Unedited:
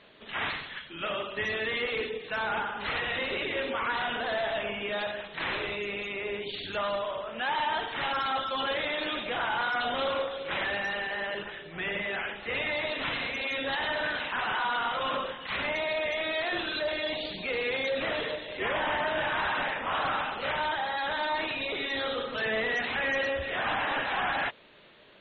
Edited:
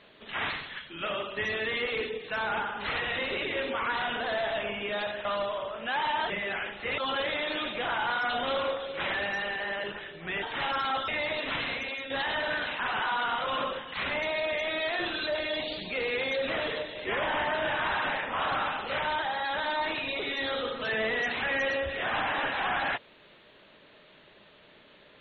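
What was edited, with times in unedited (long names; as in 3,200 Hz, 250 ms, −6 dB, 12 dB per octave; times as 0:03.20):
0:05.25–0:06.78: remove
0:07.83–0:08.49: swap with 0:11.93–0:12.61
0:13.29–0:13.63: fade out, to −9 dB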